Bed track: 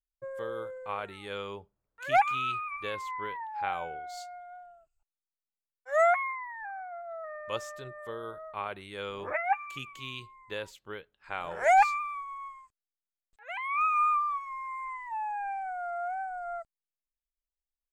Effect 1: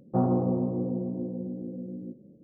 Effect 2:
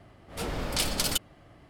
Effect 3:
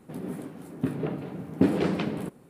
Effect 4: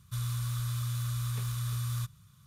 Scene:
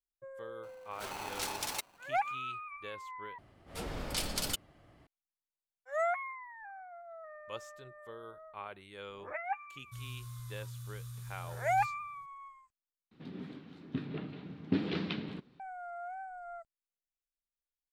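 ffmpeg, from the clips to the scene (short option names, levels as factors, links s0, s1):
-filter_complex "[2:a]asplit=2[s0][s1];[0:a]volume=0.376[s2];[s0]aeval=exprs='val(0)*sgn(sin(2*PI*860*n/s))':c=same[s3];[4:a]bass=f=250:g=5,treble=f=4000:g=5[s4];[3:a]firequalizer=gain_entry='entry(260,0);entry(570,-7);entry(1200,0);entry(3800,11);entry(9100,-25)':delay=0.05:min_phase=1[s5];[s2]asplit=3[s6][s7][s8];[s6]atrim=end=3.384[s9];[s1]atrim=end=1.69,asetpts=PTS-STARTPTS,volume=0.447[s10];[s7]atrim=start=5.066:end=13.114[s11];[s5]atrim=end=2.49,asetpts=PTS-STARTPTS,volume=0.376[s12];[s8]atrim=start=15.596[s13];[s3]atrim=end=1.69,asetpts=PTS-STARTPTS,volume=0.316,afade=t=in:d=0.004:c=hsin,afade=t=out:st=1.686:d=0.004:c=hsin,adelay=630[s14];[s4]atrim=end=2.46,asetpts=PTS-STARTPTS,volume=0.15,afade=t=in:d=0.004:c=hsin,afade=t=out:st=2.456:d=0.004:c=hsin,adelay=9800[s15];[s9][s10]acrossfade=d=0.004:c1=hsin:c2=hsin[s16];[s16][s11]acrossfade=d=0.004:c1=hsin:c2=hsin[s17];[s17][s12]acrossfade=d=0.004:c1=hsin:c2=hsin[s18];[s18][s13]acrossfade=d=0.004:c1=hsin:c2=hsin[s19];[s19][s14][s15]amix=inputs=3:normalize=0"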